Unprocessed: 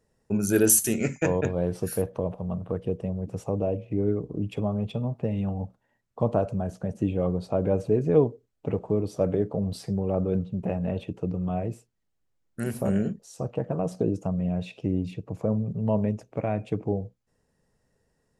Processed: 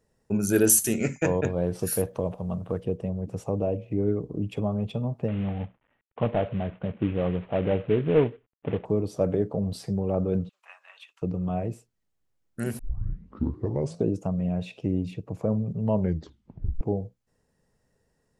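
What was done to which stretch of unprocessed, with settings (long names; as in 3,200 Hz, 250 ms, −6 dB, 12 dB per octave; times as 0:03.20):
0:01.79–0:02.84: high-shelf EQ 2,800 Hz +7.5 dB
0:05.28–0:08.85: variable-slope delta modulation 16 kbit/s
0:10.49–0:11.22: Chebyshev high-pass filter 1,100 Hz, order 4
0:12.79: tape start 1.26 s
0:15.97: tape stop 0.84 s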